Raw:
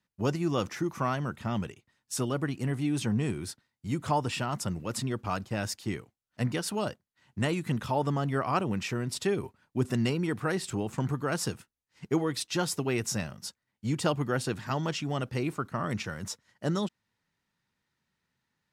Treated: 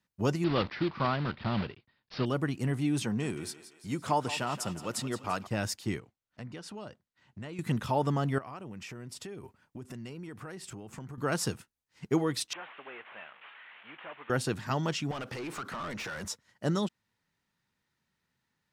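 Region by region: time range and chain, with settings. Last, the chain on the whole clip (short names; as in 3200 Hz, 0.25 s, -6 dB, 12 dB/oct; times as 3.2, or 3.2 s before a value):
0.44–2.26 block floating point 3-bit + steep low-pass 4800 Hz 72 dB/oct
3.03–5.47 HPF 220 Hz 6 dB/oct + thinning echo 0.171 s, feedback 55%, high-pass 380 Hz, level -12.5 dB
5.99–7.59 air absorption 65 m + compressor 2.5:1, threshold -45 dBFS
8.38–11.18 bell 3900 Hz -4.5 dB 0.23 oct + compressor 5:1, threshold -41 dBFS
12.53–14.3 delta modulation 16 kbps, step -42.5 dBFS + HPF 1100 Hz
15.11–16.25 compressor 10:1, threshold -40 dBFS + overdrive pedal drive 26 dB, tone 3800 Hz, clips at -29.5 dBFS
whole clip: dry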